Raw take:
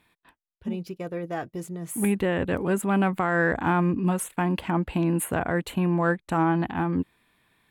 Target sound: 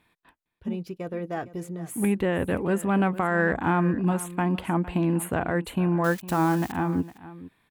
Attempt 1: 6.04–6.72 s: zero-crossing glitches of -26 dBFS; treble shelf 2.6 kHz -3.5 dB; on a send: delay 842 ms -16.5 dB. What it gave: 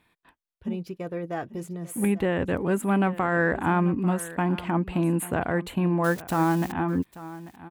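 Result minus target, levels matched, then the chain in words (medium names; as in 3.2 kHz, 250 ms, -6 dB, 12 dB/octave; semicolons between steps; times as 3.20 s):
echo 384 ms late
6.04–6.72 s: zero-crossing glitches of -26 dBFS; treble shelf 2.6 kHz -3.5 dB; on a send: delay 458 ms -16.5 dB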